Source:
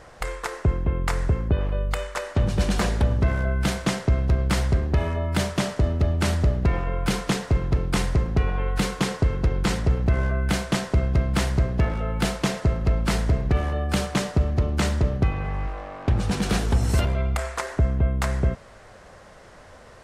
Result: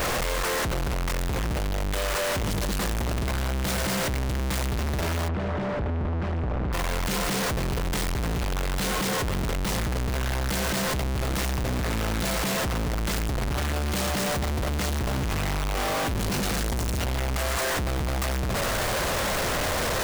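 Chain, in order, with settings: infinite clipping; 5.28–6.73 Bessel low-pass 1300 Hz, order 2; gain -3.5 dB

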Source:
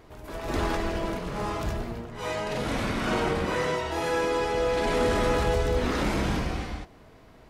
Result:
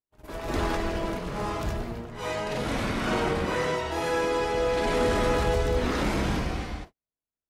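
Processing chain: gate -41 dBFS, range -49 dB

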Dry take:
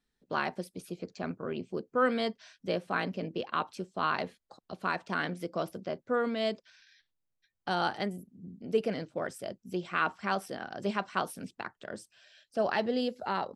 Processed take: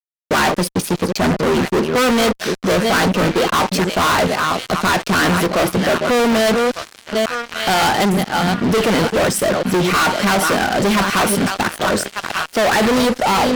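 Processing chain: reverse delay 0.427 s, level -13 dB; narrowing echo 1.196 s, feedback 71%, band-pass 2700 Hz, level -15 dB; fuzz box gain 45 dB, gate -54 dBFS

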